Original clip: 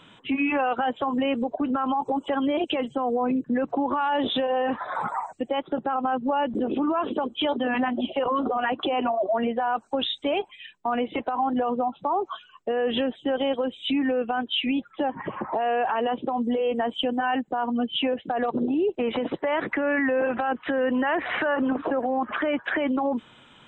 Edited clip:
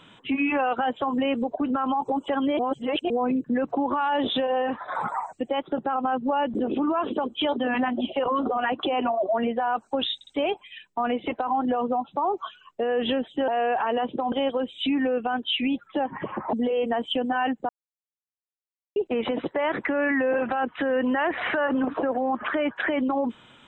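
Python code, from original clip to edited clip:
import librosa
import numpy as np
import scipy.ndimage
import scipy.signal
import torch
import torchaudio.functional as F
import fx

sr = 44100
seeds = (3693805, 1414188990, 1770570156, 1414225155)

y = fx.edit(x, sr, fx.reverse_span(start_s=2.59, length_s=0.51),
    fx.fade_out_to(start_s=4.59, length_s=0.29, floor_db=-6.0),
    fx.stutter(start_s=10.15, slice_s=0.06, count=3),
    fx.move(start_s=15.57, length_s=0.84, to_s=13.36),
    fx.silence(start_s=17.57, length_s=1.27), tone=tone)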